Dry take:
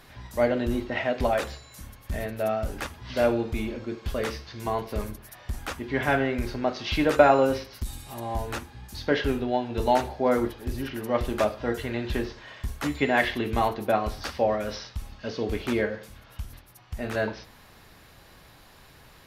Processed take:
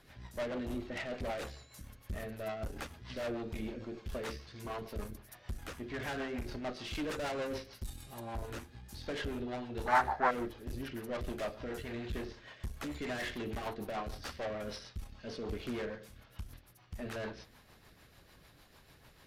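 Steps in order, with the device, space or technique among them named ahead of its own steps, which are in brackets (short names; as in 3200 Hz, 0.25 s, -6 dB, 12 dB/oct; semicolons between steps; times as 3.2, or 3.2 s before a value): overdriven rotary cabinet (tube stage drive 29 dB, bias 0.55; rotary speaker horn 6.7 Hz); 9.86–10.31 band shelf 1200 Hz +15.5 dB; gain -3.5 dB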